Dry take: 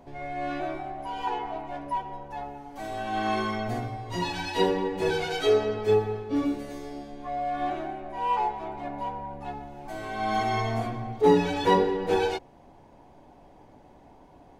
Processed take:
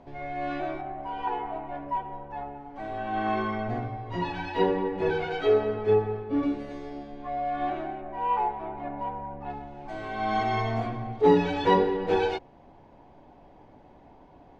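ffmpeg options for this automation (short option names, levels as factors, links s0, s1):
-af "asetnsamples=n=441:p=0,asendcmd='0.81 lowpass f 2300;6.43 lowpass f 3500;8.01 lowpass f 2200;9.5 lowpass f 4000',lowpass=4400"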